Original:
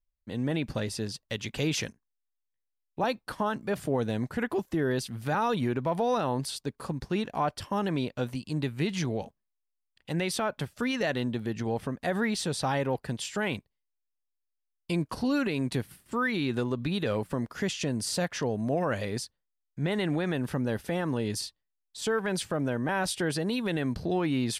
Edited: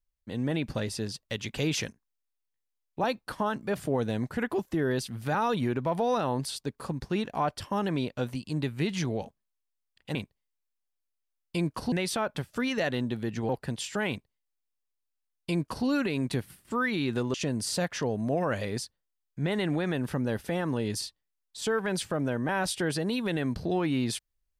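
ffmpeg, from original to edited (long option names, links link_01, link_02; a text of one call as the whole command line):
ffmpeg -i in.wav -filter_complex "[0:a]asplit=5[link_01][link_02][link_03][link_04][link_05];[link_01]atrim=end=10.152[link_06];[link_02]atrim=start=13.498:end=15.272[link_07];[link_03]atrim=start=10.148:end=11.722[link_08];[link_04]atrim=start=12.898:end=16.752[link_09];[link_05]atrim=start=17.738[link_10];[link_06][link_07]acrossfade=duration=0.004:curve1=hsin:curve2=hsin[link_11];[link_11][link_08]acrossfade=duration=0.004:curve1=hsin:curve2=hsin[link_12];[link_12][link_09]acrossfade=duration=0.004:curve1=hsin:curve2=hsin[link_13];[link_13][link_10]acrossfade=duration=0.004:curve1=hsin:curve2=hsin" out.wav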